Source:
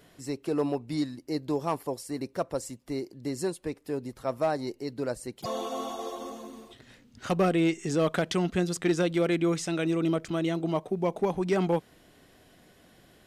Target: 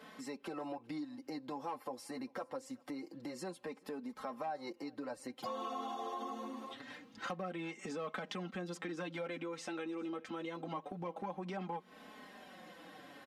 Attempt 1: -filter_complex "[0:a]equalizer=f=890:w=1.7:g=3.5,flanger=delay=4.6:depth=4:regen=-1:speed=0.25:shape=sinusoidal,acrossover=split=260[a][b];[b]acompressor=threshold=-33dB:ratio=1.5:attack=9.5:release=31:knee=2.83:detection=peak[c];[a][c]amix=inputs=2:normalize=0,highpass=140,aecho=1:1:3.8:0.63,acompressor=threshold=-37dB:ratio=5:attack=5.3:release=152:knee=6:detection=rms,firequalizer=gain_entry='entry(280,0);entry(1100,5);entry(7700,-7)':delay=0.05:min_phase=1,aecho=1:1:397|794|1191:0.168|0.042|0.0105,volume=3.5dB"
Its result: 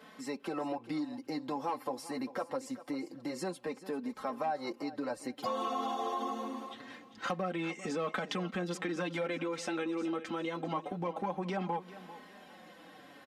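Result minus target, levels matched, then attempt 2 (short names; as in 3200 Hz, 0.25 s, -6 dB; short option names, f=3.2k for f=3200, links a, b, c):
echo-to-direct +11 dB; compressor: peak gain reduction -6.5 dB
-filter_complex "[0:a]equalizer=f=890:w=1.7:g=3.5,flanger=delay=4.6:depth=4:regen=-1:speed=0.25:shape=sinusoidal,acrossover=split=260[a][b];[b]acompressor=threshold=-33dB:ratio=1.5:attack=9.5:release=31:knee=2.83:detection=peak[c];[a][c]amix=inputs=2:normalize=0,highpass=140,aecho=1:1:3.8:0.63,acompressor=threshold=-45dB:ratio=5:attack=5.3:release=152:knee=6:detection=rms,firequalizer=gain_entry='entry(280,0);entry(1100,5);entry(7700,-7)':delay=0.05:min_phase=1,aecho=1:1:397|794:0.0473|0.0118,volume=3.5dB"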